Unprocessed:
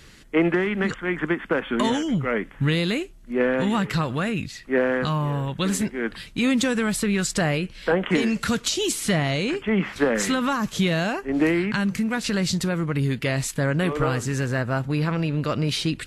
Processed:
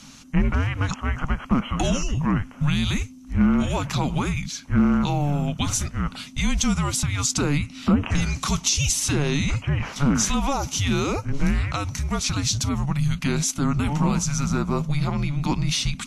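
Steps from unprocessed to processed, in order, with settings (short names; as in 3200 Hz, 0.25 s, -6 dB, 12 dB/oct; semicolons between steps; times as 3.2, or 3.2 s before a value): thirty-one-band EQ 200 Hz -10 dB, 500 Hz +7 dB, 2000 Hz -10 dB, 6300 Hz +11 dB; in parallel at +2 dB: limiter -19.5 dBFS, peak gain reduction 13 dB; on the sum: frequency shift -290 Hz; gain -4 dB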